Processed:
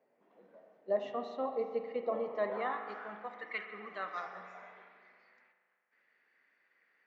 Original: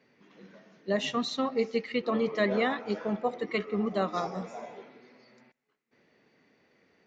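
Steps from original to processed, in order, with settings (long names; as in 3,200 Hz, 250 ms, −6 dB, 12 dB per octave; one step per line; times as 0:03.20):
band-pass filter sweep 660 Hz → 1,700 Hz, 0:02.19–0:03.22
spring reverb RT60 2 s, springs 38 ms, chirp 35 ms, DRR 6.5 dB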